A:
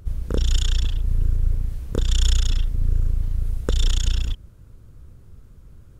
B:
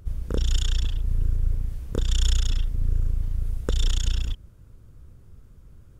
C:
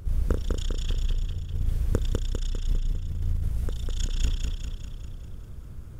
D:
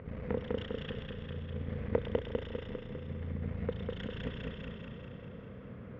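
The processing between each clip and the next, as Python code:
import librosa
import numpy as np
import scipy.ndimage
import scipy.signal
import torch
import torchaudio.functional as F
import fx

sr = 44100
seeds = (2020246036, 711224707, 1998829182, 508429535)

y1 = fx.notch(x, sr, hz=4100.0, q=26.0)
y1 = y1 * librosa.db_to_amplitude(-3.0)
y2 = fx.over_compress(y1, sr, threshold_db=-26.0, ratio=-0.5)
y2 = fx.dmg_noise_colour(y2, sr, seeds[0], colour='brown', level_db=-59.0)
y2 = fx.echo_feedback(y2, sr, ms=200, feedback_pct=56, wet_db=-3.5)
y3 = 10.0 ** (-20.5 / 20.0) * np.tanh(y2 / 10.0 ** (-20.5 / 20.0))
y3 = fx.cabinet(y3, sr, low_hz=190.0, low_slope=12, high_hz=2400.0, hz=(220.0, 340.0, 490.0, 820.0, 1400.0, 2000.0), db=(5, -8, 9, -4, -3, 5))
y3 = fx.echo_heads(y3, sr, ms=118, heads='first and second', feedback_pct=64, wet_db=-15.0)
y3 = y3 * librosa.db_to_amplitude(5.0)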